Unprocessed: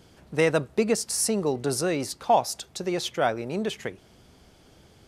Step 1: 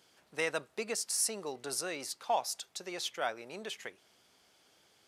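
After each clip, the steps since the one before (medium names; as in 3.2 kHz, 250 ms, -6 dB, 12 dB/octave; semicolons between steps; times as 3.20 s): high-pass 1.2 kHz 6 dB/octave; trim -5 dB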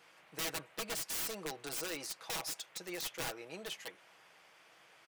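integer overflow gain 30.5 dB; comb 6.2 ms, depth 59%; band noise 470–2800 Hz -61 dBFS; trim -3 dB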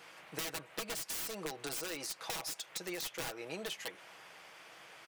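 compression, threshold -45 dBFS, peak gain reduction 10.5 dB; trim +7.5 dB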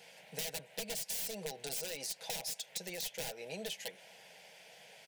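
static phaser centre 320 Hz, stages 6; trim +1.5 dB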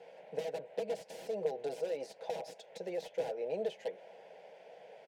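band-pass filter 490 Hz, Q 1.7; trim +10.5 dB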